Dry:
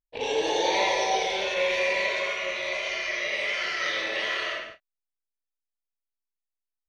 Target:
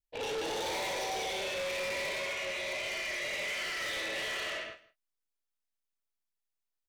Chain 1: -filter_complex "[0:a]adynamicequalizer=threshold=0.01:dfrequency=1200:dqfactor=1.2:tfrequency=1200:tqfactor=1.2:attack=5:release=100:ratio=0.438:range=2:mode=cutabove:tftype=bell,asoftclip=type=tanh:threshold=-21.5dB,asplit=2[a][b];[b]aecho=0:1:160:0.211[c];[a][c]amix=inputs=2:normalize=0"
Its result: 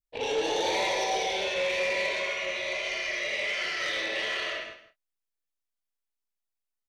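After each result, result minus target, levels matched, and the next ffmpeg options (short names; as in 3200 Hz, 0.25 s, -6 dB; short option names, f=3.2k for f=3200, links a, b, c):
soft clip: distortion -10 dB; echo-to-direct +6.5 dB
-filter_complex "[0:a]adynamicequalizer=threshold=0.01:dfrequency=1200:dqfactor=1.2:tfrequency=1200:tqfactor=1.2:attack=5:release=100:ratio=0.438:range=2:mode=cutabove:tftype=bell,asoftclip=type=tanh:threshold=-33dB,asplit=2[a][b];[b]aecho=0:1:160:0.211[c];[a][c]amix=inputs=2:normalize=0"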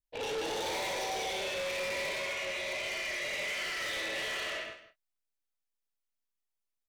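echo-to-direct +6.5 dB
-filter_complex "[0:a]adynamicequalizer=threshold=0.01:dfrequency=1200:dqfactor=1.2:tfrequency=1200:tqfactor=1.2:attack=5:release=100:ratio=0.438:range=2:mode=cutabove:tftype=bell,asoftclip=type=tanh:threshold=-33dB,asplit=2[a][b];[b]aecho=0:1:160:0.1[c];[a][c]amix=inputs=2:normalize=0"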